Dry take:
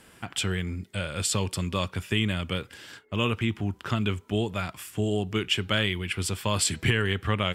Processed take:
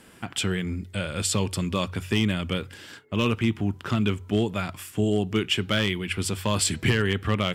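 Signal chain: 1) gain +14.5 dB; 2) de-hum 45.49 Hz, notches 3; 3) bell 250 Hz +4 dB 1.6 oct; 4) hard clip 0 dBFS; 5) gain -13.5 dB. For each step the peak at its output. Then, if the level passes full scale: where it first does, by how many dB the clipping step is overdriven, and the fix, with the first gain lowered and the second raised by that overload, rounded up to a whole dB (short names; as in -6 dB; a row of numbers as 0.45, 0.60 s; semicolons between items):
+4.5, +5.0, +6.0, 0.0, -13.5 dBFS; step 1, 6.0 dB; step 1 +8.5 dB, step 5 -7.5 dB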